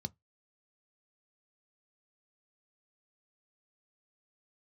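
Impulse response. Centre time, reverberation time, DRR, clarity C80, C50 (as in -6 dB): 3 ms, 0.15 s, 11.5 dB, 44.0 dB, 34.0 dB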